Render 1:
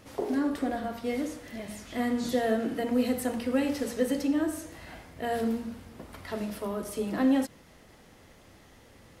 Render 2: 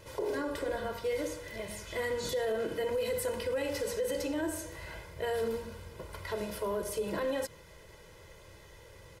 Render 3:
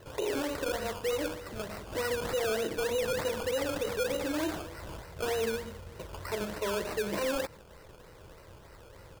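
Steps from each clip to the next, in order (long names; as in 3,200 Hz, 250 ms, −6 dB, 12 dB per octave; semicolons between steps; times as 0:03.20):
comb filter 2 ms, depth 97%; brickwall limiter −23.5 dBFS, peak gain reduction 11 dB; level −1.5 dB
sample-and-hold swept by an LFO 18×, swing 60% 3.3 Hz; level +1.5 dB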